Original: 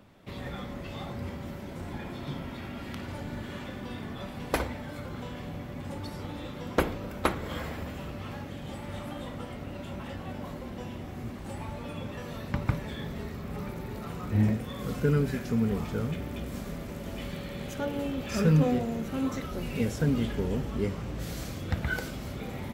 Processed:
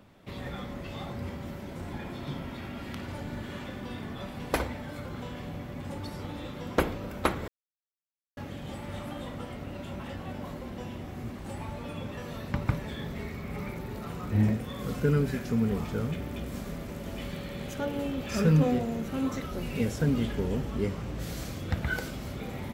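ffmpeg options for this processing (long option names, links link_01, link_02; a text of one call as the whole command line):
ffmpeg -i in.wav -filter_complex "[0:a]asettb=1/sr,asplit=3[link_01][link_02][link_03];[link_01]atrim=end=13.154[link_04];[link_02]atrim=start=13.15:end=13.78,asetpts=PTS-STARTPTS,afade=type=in:duration=0.004:curve=qsin,afade=type=out:start_time=0.626:duration=0.004:curve=qsin,equalizer=frequency=2200:width_type=o:width=0.2:gain=10.5[link_05];[link_03]atrim=start=13.776[link_06];[link_04][link_05]acrossfade=duration=0.004:curve1=hsin:curve2=qsin[link_07];[link_07][link_06]acrossfade=duration=0.004:curve1=qsin:curve2=hsin,asplit=3[link_08][link_09][link_10];[link_08]atrim=end=7.48,asetpts=PTS-STARTPTS,afade=type=out:start_time=7.476:duration=0.004:curve=hsin[link_11];[link_09]atrim=start=7.48:end=8.37,asetpts=PTS-STARTPTS,volume=0[link_12];[link_10]atrim=start=8.37,asetpts=PTS-STARTPTS,afade=type=in:duration=0.004:curve=hsin[link_13];[link_11][link_12][link_13]concat=n=3:v=0:a=1" out.wav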